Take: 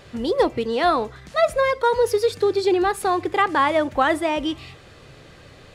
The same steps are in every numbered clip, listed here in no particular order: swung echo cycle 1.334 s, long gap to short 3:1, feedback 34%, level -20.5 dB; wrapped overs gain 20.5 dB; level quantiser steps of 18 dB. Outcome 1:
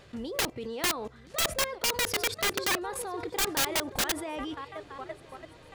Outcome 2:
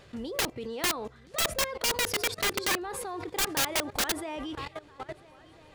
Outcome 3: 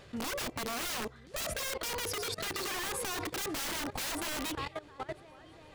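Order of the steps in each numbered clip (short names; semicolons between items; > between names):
level quantiser > swung echo > wrapped overs; swung echo > level quantiser > wrapped overs; swung echo > wrapped overs > level quantiser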